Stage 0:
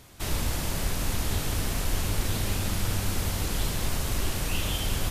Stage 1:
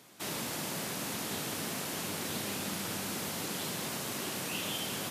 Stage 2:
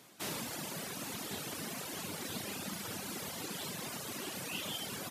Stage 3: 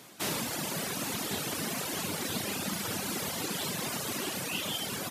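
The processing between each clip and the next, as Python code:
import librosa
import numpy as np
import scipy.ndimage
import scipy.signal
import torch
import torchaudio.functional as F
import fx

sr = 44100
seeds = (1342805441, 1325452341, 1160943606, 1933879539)

y1 = scipy.signal.sosfilt(scipy.signal.butter(4, 160.0, 'highpass', fs=sr, output='sos'), x)
y1 = F.gain(torch.from_numpy(y1), -3.5).numpy()
y2 = fx.dereverb_blind(y1, sr, rt60_s=1.9)
y2 = F.gain(torch.from_numpy(y2), -1.0).numpy()
y3 = fx.rider(y2, sr, range_db=10, speed_s=0.5)
y3 = F.gain(torch.from_numpy(y3), 7.0).numpy()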